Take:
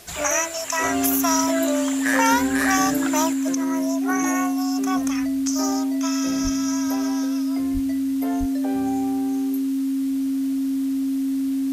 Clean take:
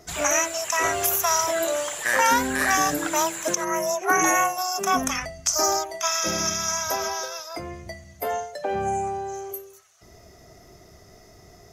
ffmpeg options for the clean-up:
-filter_complex "[0:a]bandreject=f=270:w=30,asplit=3[a][b][c];[a]afade=t=out:st=6.43:d=0.02[d];[b]highpass=f=140:w=0.5412,highpass=f=140:w=1.3066,afade=t=in:st=6.43:d=0.02,afade=t=out:st=6.55:d=0.02[e];[c]afade=t=in:st=6.55:d=0.02[f];[d][e][f]amix=inputs=3:normalize=0,asplit=3[g][h][i];[g]afade=t=out:st=7.73:d=0.02[j];[h]highpass=f=140:w=0.5412,highpass=f=140:w=1.3066,afade=t=in:st=7.73:d=0.02,afade=t=out:st=7.85:d=0.02[k];[i]afade=t=in:st=7.85:d=0.02[l];[j][k][l]amix=inputs=3:normalize=0,asplit=3[m][n][o];[m]afade=t=out:st=8.39:d=0.02[p];[n]highpass=f=140:w=0.5412,highpass=f=140:w=1.3066,afade=t=in:st=8.39:d=0.02,afade=t=out:st=8.51:d=0.02[q];[o]afade=t=in:st=8.51:d=0.02[r];[p][q][r]amix=inputs=3:normalize=0,afwtdn=0.0056,asetnsamples=n=441:p=0,asendcmd='3.33 volume volume 6dB',volume=0dB"

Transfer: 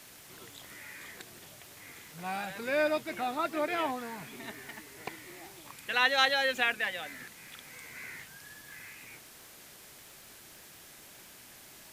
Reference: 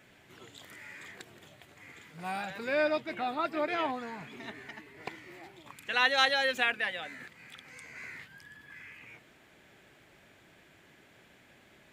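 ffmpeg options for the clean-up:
-af "adeclick=t=4,afwtdn=0.0025"

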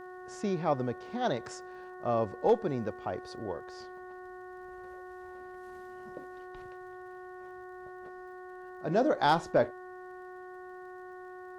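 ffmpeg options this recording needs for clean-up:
-af "adeclick=t=4,bandreject=f=366.6:t=h:w=4,bandreject=f=733.2:t=h:w=4,bandreject=f=1.0998k:t=h:w=4,bandreject=f=1.4664k:t=h:w=4,bandreject=f=1.833k:t=h:w=4"

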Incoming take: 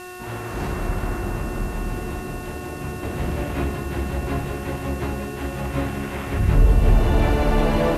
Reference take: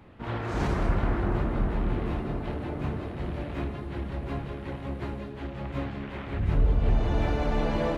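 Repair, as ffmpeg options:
-af "bandreject=f=363.1:t=h:w=4,bandreject=f=726.2:t=h:w=4,bandreject=f=1.0893k:t=h:w=4,bandreject=f=1.4524k:t=h:w=4,bandreject=f=1.8155k:t=h:w=4,bandreject=f=2.7k:w=30,afwtdn=0.0056,asetnsamples=n=441:p=0,asendcmd='3.03 volume volume -7.5dB',volume=0dB"

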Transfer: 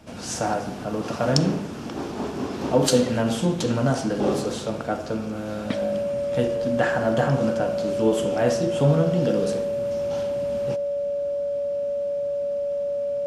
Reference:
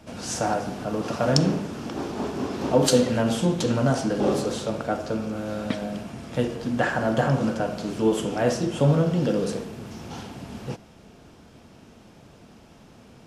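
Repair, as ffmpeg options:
-af "bandreject=f=570:w=30"

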